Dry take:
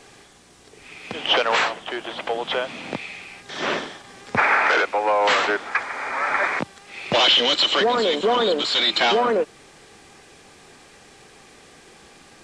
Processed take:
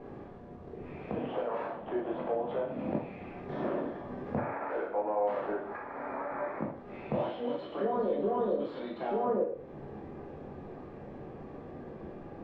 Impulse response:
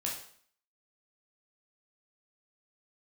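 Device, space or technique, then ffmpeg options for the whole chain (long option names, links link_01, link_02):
television next door: -filter_complex "[0:a]acompressor=threshold=-35dB:ratio=5,lowpass=590[link_01];[1:a]atrim=start_sample=2205[link_02];[link_01][link_02]afir=irnorm=-1:irlink=0,volume=6.5dB"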